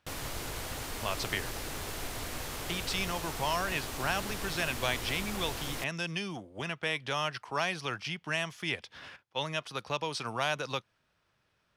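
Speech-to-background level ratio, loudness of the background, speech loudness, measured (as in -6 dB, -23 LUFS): 3.5 dB, -38.0 LUFS, -34.5 LUFS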